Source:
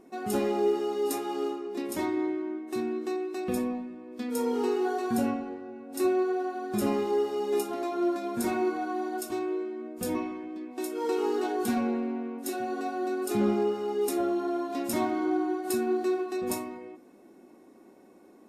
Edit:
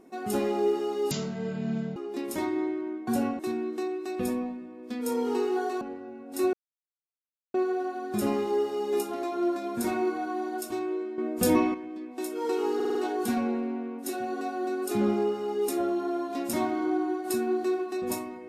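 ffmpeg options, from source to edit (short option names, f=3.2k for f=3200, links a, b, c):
-filter_complex "[0:a]asplit=13[a][b][c][d][e][f][g][h][i][j][k][l][m];[a]atrim=end=1.114[n];[b]atrim=start=1.11:end=1.57,asetpts=PTS-STARTPTS,asetrate=23814,aresample=44100[o];[c]atrim=start=1.566:end=2.682[p];[d]atrim=start=5.098:end=5.422[q];[e]atrim=start=2.678:end=5.102[r];[f]atrim=start=5.418:end=6.14,asetpts=PTS-STARTPTS,afade=t=out:st=0.718:d=0.004:c=hsin,apad=pad_dur=1.01[s];[g]atrim=start=6.14:end=9.782,asetpts=PTS-STARTPTS,afade=t=in:d=0.004:c=hsin[t];[h]atrim=start=9.778:end=10.342,asetpts=PTS-STARTPTS,volume=8.5dB[u];[i]atrim=start=10.338:end=11.402[v];[j]atrim=start=11.348:end=11.402[w];[k]atrim=start=11.348:end=11.402[x];[l]atrim=start=11.348:end=11.402[y];[m]atrim=start=11.348[z];[n][o]acrossfade=d=0.004:c1=hsin:c2=hsin[aa];[aa][p]acrossfade=d=0.004:c1=hsin:c2=hsin[ab];[ab][q]acrossfade=d=0.004:c1=hsin:c2=hsin[ac];[ac][r]acrossfade=d=0.004:c1=hsin:c2=hsin[ad];[s][t]concat=n=2:v=0:a=1[ae];[ad][ae]acrossfade=d=0.004:c1=hsin:c2=hsin[af];[af][u]acrossfade=d=0.004:c1=hsin:c2=hsin[ag];[ag][v]acrossfade=d=0.004:c1=hsin:c2=hsin[ah];[ah][w]acrossfade=d=0.004:c1=hsin:c2=hsin[ai];[ai][x]acrossfade=d=0.004:c1=hsin:c2=hsin[aj];[aj][y]acrossfade=d=0.004:c1=hsin:c2=hsin[ak];[ak][z]acrossfade=d=0.004:c1=hsin:c2=hsin"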